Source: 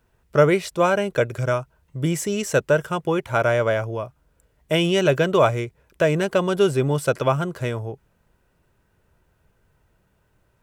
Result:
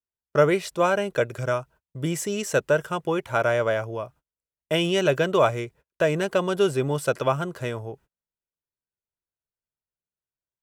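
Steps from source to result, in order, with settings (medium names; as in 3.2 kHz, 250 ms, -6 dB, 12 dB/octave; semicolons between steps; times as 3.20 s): gate -45 dBFS, range -33 dB; bass shelf 170 Hz -6 dB; band-stop 2.2 kHz, Q 27; trim -2 dB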